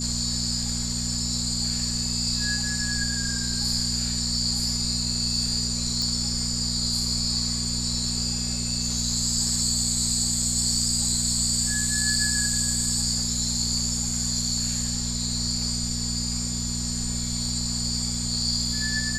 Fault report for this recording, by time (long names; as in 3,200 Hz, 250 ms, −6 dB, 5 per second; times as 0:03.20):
mains hum 60 Hz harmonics 4 −31 dBFS
whistle 7,100 Hz −32 dBFS
0:06.02: click